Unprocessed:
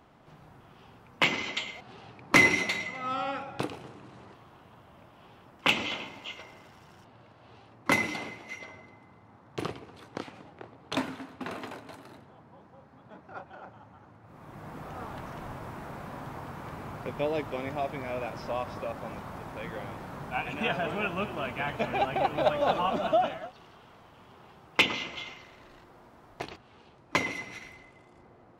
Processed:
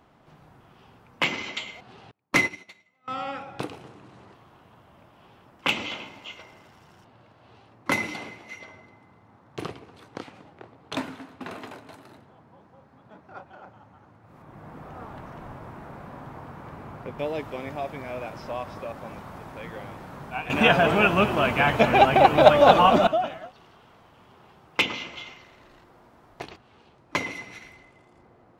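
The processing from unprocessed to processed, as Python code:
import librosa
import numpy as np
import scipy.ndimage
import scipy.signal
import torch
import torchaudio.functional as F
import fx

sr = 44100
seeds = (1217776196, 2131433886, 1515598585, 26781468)

y = fx.upward_expand(x, sr, threshold_db=-37.0, expansion=2.5, at=(2.11, 3.08))
y = fx.high_shelf(y, sr, hz=3000.0, db=-8.5, at=(14.42, 17.19))
y = fx.edit(y, sr, fx.clip_gain(start_s=20.5, length_s=2.57, db=11.5), tone=tone)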